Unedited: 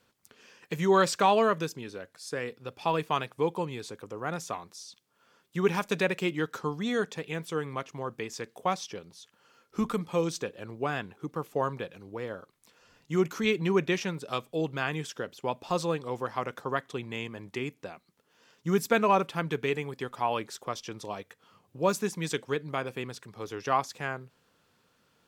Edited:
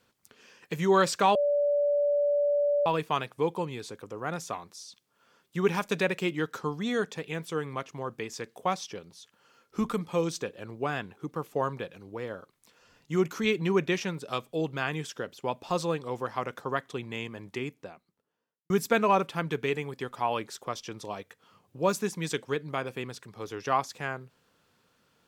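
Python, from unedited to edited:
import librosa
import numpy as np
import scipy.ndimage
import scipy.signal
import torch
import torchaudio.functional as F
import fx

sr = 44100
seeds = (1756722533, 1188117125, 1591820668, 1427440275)

y = fx.studio_fade_out(x, sr, start_s=17.5, length_s=1.2)
y = fx.edit(y, sr, fx.bleep(start_s=1.35, length_s=1.51, hz=579.0, db=-22.0), tone=tone)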